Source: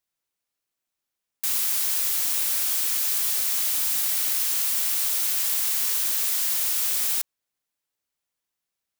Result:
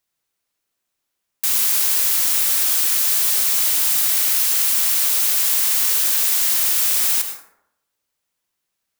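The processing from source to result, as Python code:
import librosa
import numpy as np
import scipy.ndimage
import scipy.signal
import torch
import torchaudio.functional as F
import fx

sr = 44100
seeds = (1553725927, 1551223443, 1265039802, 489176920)

y = fx.rev_plate(x, sr, seeds[0], rt60_s=0.79, hf_ratio=0.45, predelay_ms=80, drr_db=5.5)
y = F.gain(torch.from_numpy(y), 6.0).numpy()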